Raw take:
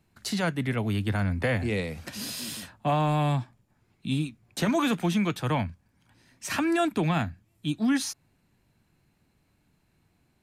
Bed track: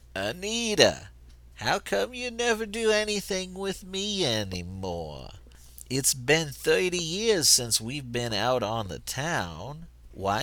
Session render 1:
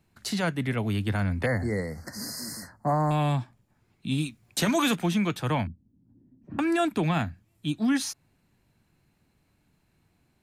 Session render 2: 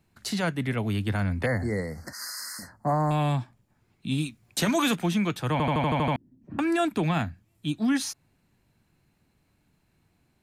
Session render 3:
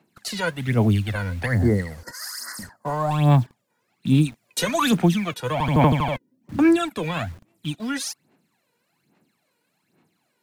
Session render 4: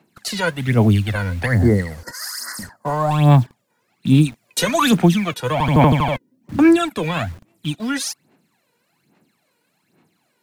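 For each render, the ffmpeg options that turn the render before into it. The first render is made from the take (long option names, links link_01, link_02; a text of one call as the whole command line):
ffmpeg -i in.wav -filter_complex "[0:a]asettb=1/sr,asplit=3[link_01][link_02][link_03];[link_01]atrim=end=1.464[link_04];[link_02]atrim=start=1.46:end=3.11,asetpts=PTS-STARTPTS,afade=type=in:duration=0.004:curve=qsin,afade=type=out:start_time=1.646:duration=0.004:curve=qsin,asuperstop=centerf=3000:order=20:qfactor=1.4[link_05];[link_03]atrim=start=3.106[link_06];[link_04][link_05]acrossfade=duration=0.004:curve1=hsin:curve2=qsin[link_07];[link_07][link_06]acrossfade=duration=0.004:curve1=qsin:curve2=hsin,asettb=1/sr,asplit=3[link_08][link_09][link_10];[link_08]atrim=end=4.184[link_11];[link_09]atrim=start=4.18:end=4.96,asetpts=PTS-STARTPTS,afade=type=in:duration=0.004:curve=qsin,afade=type=out:start_time=0.776:duration=0.004:curve=qsin,highshelf=frequency=2700:gain=8[link_12];[link_10]atrim=start=4.956[link_13];[link_11][link_12]acrossfade=duration=0.004:curve1=hsin:curve2=qsin[link_14];[link_14][link_13]acrossfade=duration=0.004:curve1=qsin:curve2=hsin,asettb=1/sr,asplit=3[link_15][link_16][link_17];[link_15]atrim=end=5.674[link_18];[link_16]atrim=start=5.67:end=6.59,asetpts=PTS-STARTPTS,afade=type=in:duration=0.004:curve=qsin,afade=type=out:start_time=0.916:duration=0.004:curve=qsin,lowpass=frequency=270:width_type=q:width=2.7[link_19];[link_17]atrim=start=6.586[link_20];[link_18][link_19]acrossfade=duration=0.004:curve1=hsin:curve2=qsin[link_21];[link_21][link_20]acrossfade=duration=0.004:curve1=qsin:curve2=hsin" out.wav
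ffmpeg -i in.wav -filter_complex "[0:a]asettb=1/sr,asplit=3[link_01][link_02][link_03];[link_01]atrim=end=2.134[link_04];[link_02]atrim=start=2.13:end=2.59,asetpts=PTS-STARTPTS,afade=type=in:duration=0.004:curve=qsin,afade=type=out:start_time=0.456:duration=0.004:curve=qsin,highpass=frequency=1300:width_type=q:width=2.6[link_05];[link_03]atrim=start=2.586[link_06];[link_04][link_05]acrossfade=duration=0.004:curve1=hsin:curve2=qsin[link_07];[link_07][link_06]acrossfade=duration=0.004:curve1=qsin:curve2=hsin,asplit=9[link_08][link_09][link_10][link_11][link_12][link_13][link_14][link_15][link_16];[link_08]atrim=end=5.602[link_17];[link_09]atrim=start=5.518:end=5.602[link_18];[link_10]atrim=start=5.518:end=5.602[link_19];[link_11]atrim=start=5.518:end=5.602[link_20];[link_12]atrim=start=5.518:end=5.602[link_21];[link_13]atrim=start=5.518:end=5.602[link_22];[link_14]atrim=start=5.518:end=5.602[link_23];[link_15]atrim=start=5.518:end=5.602[link_24];[link_16]atrim=start=6.158[link_25];[link_17][link_18]acrossfade=duration=0.004:curve1=hsin:curve2=hsin[link_26];[link_26][link_19]acrossfade=duration=0.004:curve1=hsin:curve2=hsin[link_27];[link_27][link_20]acrossfade=duration=0.004:curve1=hsin:curve2=hsin[link_28];[link_28][link_21]acrossfade=duration=0.004:curve1=hsin:curve2=hsin[link_29];[link_29][link_22]acrossfade=duration=0.004:curve1=hsin:curve2=hsin[link_30];[link_30][link_23]acrossfade=duration=0.004:curve1=hsin:curve2=hsin[link_31];[link_31][link_24]acrossfade=duration=0.004:curve1=hsin:curve2=hsin[link_32];[link_32][link_25]acrossfade=duration=0.004:curve1=hsin:curve2=hsin" out.wav
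ffmpeg -i in.wav -filter_complex "[0:a]aphaser=in_gain=1:out_gain=1:delay=2.1:decay=0.72:speed=1.2:type=sinusoidal,acrossover=split=180|6800[link_01][link_02][link_03];[link_01]acrusher=bits=7:mix=0:aa=0.000001[link_04];[link_04][link_02][link_03]amix=inputs=3:normalize=0" out.wav
ffmpeg -i in.wav -af "volume=4.5dB,alimiter=limit=-2dB:level=0:latency=1" out.wav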